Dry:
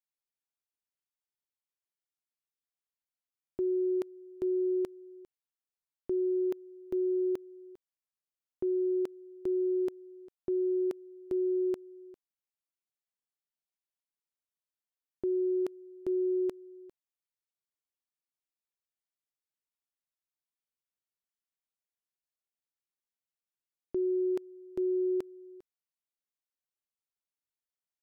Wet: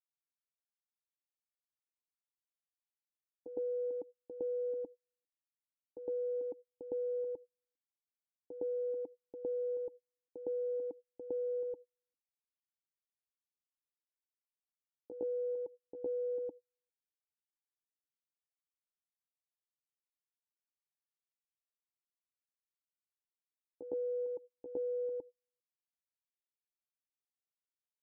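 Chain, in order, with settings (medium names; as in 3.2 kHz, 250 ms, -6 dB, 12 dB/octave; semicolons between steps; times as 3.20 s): local Wiener filter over 41 samples; gate -41 dBFS, range -42 dB; peaking EQ 740 Hz -4.5 dB 0.41 oct; compression 3:1, threshold -34 dBFS, peak gain reduction 4 dB; pitch shift +5 st; cascade formant filter u; reverse echo 110 ms -8 dB; trim +11 dB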